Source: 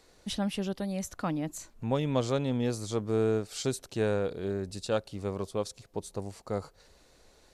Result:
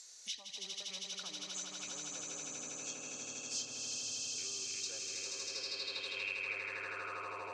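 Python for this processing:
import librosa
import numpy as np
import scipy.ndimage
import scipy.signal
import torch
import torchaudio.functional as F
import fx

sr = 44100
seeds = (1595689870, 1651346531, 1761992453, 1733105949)

p1 = fx.rattle_buzz(x, sr, strikes_db=-43.0, level_db=-31.0)
p2 = fx.spec_erase(p1, sr, start_s=2.48, length_s=1.85, low_hz=300.0, high_hz=2500.0)
p3 = fx.env_lowpass_down(p2, sr, base_hz=740.0, full_db=-27.0)
p4 = fx.high_shelf(p3, sr, hz=2000.0, db=3.0)
p5 = fx.over_compress(p4, sr, threshold_db=-32.0, ratio=-1.0)
p6 = p4 + F.gain(torch.from_numpy(p5), -0.5).numpy()
p7 = 10.0 ** (-24.5 / 20.0) * np.tanh(p6 / 10.0 ** (-24.5 / 20.0))
p8 = fx.noise_reduce_blind(p7, sr, reduce_db=14)
p9 = p8 + fx.echo_swell(p8, sr, ms=80, loudest=8, wet_db=-5, dry=0)
p10 = fx.filter_sweep_bandpass(p9, sr, from_hz=6300.0, to_hz=940.0, start_s=5.43, end_s=7.48, q=3.8)
p11 = fx.band_squash(p10, sr, depth_pct=70)
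y = F.gain(torch.from_numpy(p11), 4.0).numpy()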